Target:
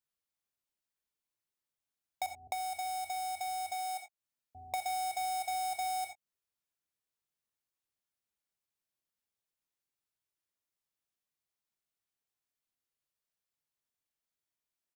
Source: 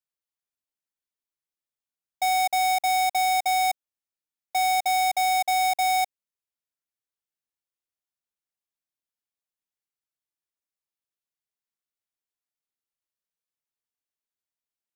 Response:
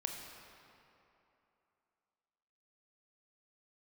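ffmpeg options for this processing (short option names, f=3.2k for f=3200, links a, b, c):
-filter_complex "[0:a]equalizer=f=89:t=o:w=1.9:g=4,asplit=2[a][b];[b]adelay=20,volume=-13dB[c];[a][c]amix=inputs=2:normalize=0,asettb=1/sr,asplit=3[d][e][f];[d]atrim=end=2.264[g];[e]atrim=start=2.26:end=4.74,asetpts=PTS-STARTPTS,afade=t=in:d=0.004:c=qsin,afade=t=out:st=2.476:d=0.004:c=qsin,acrossover=split=330[h][i];[i]adelay=260[j];[h][j]amix=inputs=2:normalize=0,atrim=end_sample=109368[k];[f]atrim=start=4.736[l];[g][k]acrossfade=d=0.004:c1=hsin:c2=qsin[m];[m][l]acrossfade=d=0.004:c1=qsin:c2=hsin[n];[1:a]atrim=start_sample=2205,atrim=end_sample=3969[o];[n][o]afir=irnorm=-1:irlink=0,acompressor=threshold=-38dB:ratio=4,volume=1dB"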